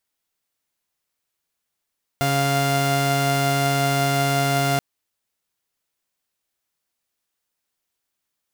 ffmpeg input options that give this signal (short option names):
-f lavfi -i "aevalsrc='0.119*((2*mod(138.59*t,1)-1)+(2*mod(698.46*t,1)-1))':d=2.58:s=44100"